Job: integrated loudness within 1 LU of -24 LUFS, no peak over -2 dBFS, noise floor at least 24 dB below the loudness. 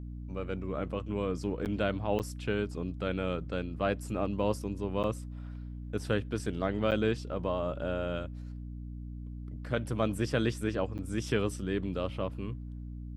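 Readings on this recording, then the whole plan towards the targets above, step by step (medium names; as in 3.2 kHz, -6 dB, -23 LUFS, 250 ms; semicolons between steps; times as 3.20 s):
dropouts 5; longest dropout 8.6 ms; hum 60 Hz; highest harmonic 300 Hz; hum level -39 dBFS; loudness -34.0 LUFS; peak level -13.5 dBFS; loudness target -24.0 LUFS
-> interpolate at 1.65/2.19/5.03/6.91/10.98 s, 8.6 ms; de-hum 60 Hz, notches 5; trim +10 dB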